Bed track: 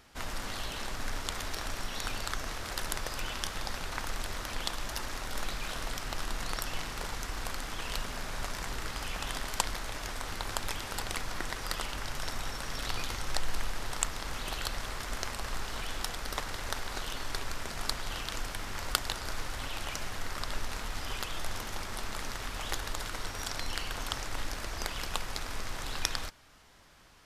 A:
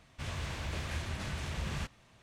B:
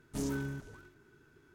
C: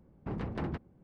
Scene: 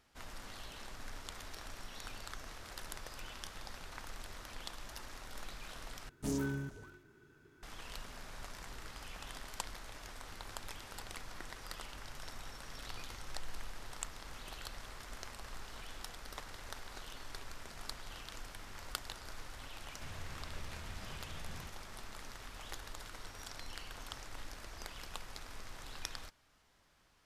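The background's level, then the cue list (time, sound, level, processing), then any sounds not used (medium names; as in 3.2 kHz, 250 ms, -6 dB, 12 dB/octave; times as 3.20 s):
bed track -11.5 dB
6.09 s: replace with B -0.5 dB
19.83 s: add A -0.5 dB + compression, threshold -46 dBFS
not used: C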